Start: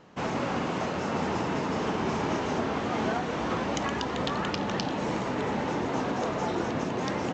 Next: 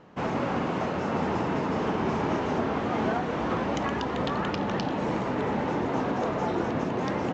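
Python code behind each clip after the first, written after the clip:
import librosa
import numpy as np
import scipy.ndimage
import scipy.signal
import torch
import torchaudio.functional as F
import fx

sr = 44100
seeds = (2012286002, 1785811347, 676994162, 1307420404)

y = fx.high_shelf(x, sr, hz=3800.0, db=-11.5)
y = F.gain(torch.from_numpy(y), 2.0).numpy()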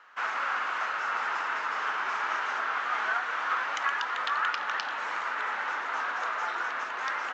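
y = fx.highpass_res(x, sr, hz=1400.0, q=3.0)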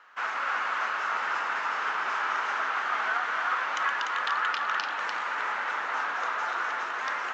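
y = x + 10.0 ** (-4.5 / 20.0) * np.pad(x, (int(295 * sr / 1000.0), 0))[:len(x)]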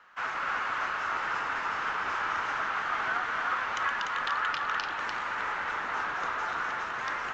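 y = fx.octave_divider(x, sr, octaves=1, level_db=3.0)
y = F.gain(torch.from_numpy(y), -2.0).numpy()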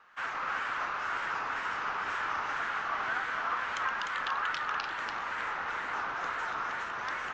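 y = fx.wow_flutter(x, sr, seeds[0], rate_hz=2.1, depth_cents=110.0)
y = F.gain(torch.from_numpy(y), -2.5).numpy()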